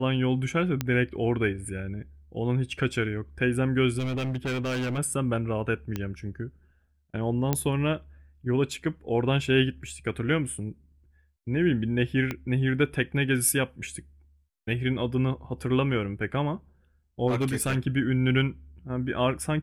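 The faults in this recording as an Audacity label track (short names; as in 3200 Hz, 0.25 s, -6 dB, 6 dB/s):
0.810000	0.810000	pop -12 dBFS
3.980000	4.990000	clipped -26 dBFS
5.960000	5.960000	pop -16 dBFS
7.530000	7.530000	pop -10 dBFS
12.310000	12.310000	pop -16 dBFS
17.270000	17.760000	clipped -21 dBFS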